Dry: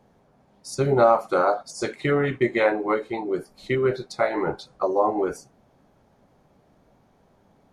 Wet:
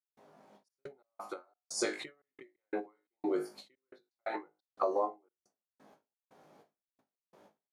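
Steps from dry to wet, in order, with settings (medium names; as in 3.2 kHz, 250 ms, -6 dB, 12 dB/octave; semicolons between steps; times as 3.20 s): high-pass 290 Hz 12 dB/octave; flutter echo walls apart 3.3 m, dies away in 0.23 s; compression 4:1, threshold -29 dBFS, peak gain reduction 15 dB; trance gate ".xxx.x.xx" 88 bpm -60 dB; endings held to a fixed fall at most 250 dB/s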